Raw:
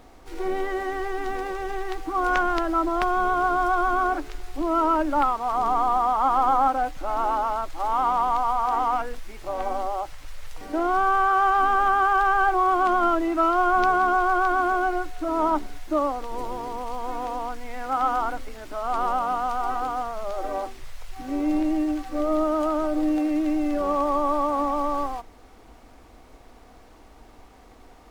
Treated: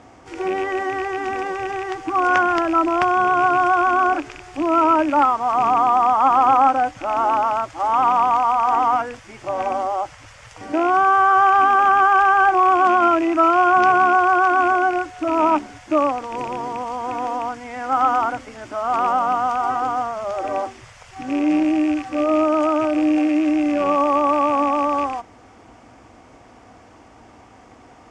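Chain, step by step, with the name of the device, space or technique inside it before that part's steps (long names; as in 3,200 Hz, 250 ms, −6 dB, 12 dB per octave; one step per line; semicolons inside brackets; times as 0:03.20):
car door speaker with a rattle (loose part that buzzes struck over −37 dBFS, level −27 dBFS; loudspeaker in its box 100–7,900 Hz, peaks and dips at 110 Hz +8 dB, 430 Hz −4 dB, 4,000 Hz −10 dB)
level +6 dB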